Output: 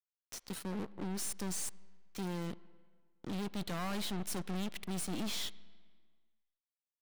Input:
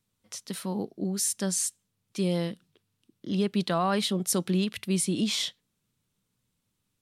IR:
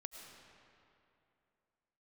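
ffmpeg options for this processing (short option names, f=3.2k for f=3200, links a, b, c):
-filter_complex "[0:a]aeval=exprs='sgn(val(0))*max(abs(val(0))-0.00891,0)':c=same,adynamicequalizer=threshold=0.00891:dfrequency=750:dqfactor=0.7:tfrequency=750:tqfactor=0.7:attack=5:release=100:ratio=0.375:range=2:mode=cutabove:tftype=bell,aeval=exprs='(tanh(126*val(0)+0.55)-tanh(0.55))/126':c=same,asplit=2[a][b];[1:a]atrim=start_sample=2205,asetrate=74970,aresample=44100,lowpass=3.5k[c];[b][c]afir=irnorm=-1:irlink=0,volume=-6dB[d];[a][d]amix=inputs=2:normalize=0,volume=4.5dB"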